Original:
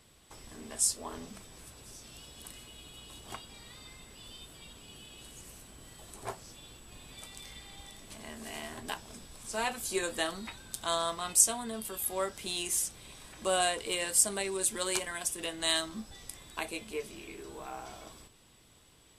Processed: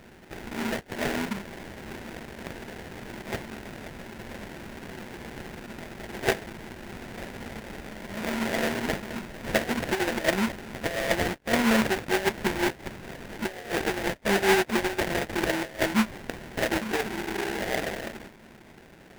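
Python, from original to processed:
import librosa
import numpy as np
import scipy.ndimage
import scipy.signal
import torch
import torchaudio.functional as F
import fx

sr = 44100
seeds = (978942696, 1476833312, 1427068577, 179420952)

y = fx.high_shelf(x, sr, hz=4000.0, db=4.5)
y = fx.over_compress(y, sr, threshold_db=-35.0, ratio=-0.5)
y = fx.small_body(y, sr, hz=(220.0, 360.0, 650.0), ring_ms=40, db=14)
y = fx.sample_hold(y, sr, seeds[0], rate_hz=1200.0, jitter_pct=20)
y = fx.peak_eq(y, sr, hz=2000.0, db=7.0, octaves=1.1)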